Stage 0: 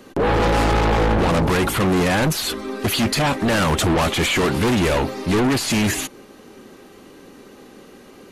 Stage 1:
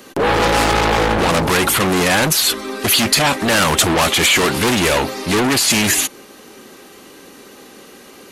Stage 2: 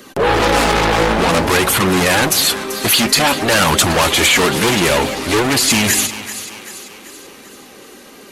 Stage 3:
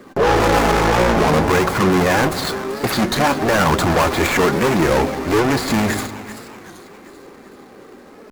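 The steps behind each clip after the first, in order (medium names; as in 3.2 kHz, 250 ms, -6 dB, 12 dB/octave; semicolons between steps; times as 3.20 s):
tilt EQ +2 dB/octave; trim +4.5 dB
flange 0.53 Hz, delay 0.5 ms, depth 5.8 ms, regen -45%; two-band feedback delay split 780 Hz, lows 175 ms, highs 387 ms, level -12.5 dB; trim +5 dB
median filter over 15 samples; on a send at -15 dB: reverberation RT60 1.8 s, pre-delay 3 ms; on the sum: warped record 33 1/3 rpm, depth 160 cents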